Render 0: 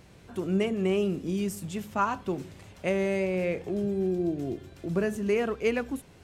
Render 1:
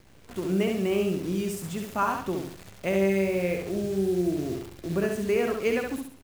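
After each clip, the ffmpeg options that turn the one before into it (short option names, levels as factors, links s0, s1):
-af "acrusher=bits=8:dc=4:mix=0:aa=0.000001,aecho=1:1:67|134|201|268|335:0.631|0.227|0.0818|0.0294|0.0106"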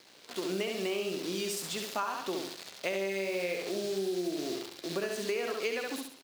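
-af "highpass=360,equalizer=f=4300:t=o:w=1.1:g=11,acompressor=threshold=0.0355:ratio=10"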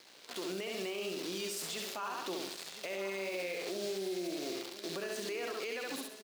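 -af "lowshelf=f=280:g=-6.5,alimiter=level_in=1.88:limit=0.0631:level=0:latency=1:release=46,volume=0.531,aecho=1:1:1013:0.211"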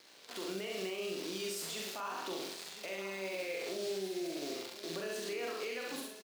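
-filter_complex "[0:a]asplit=2[s0][s1];[s1]adelay=42,volume=0.631[s2];[s0][s2]amix=inputs=2:normalize=0,volume=0.75"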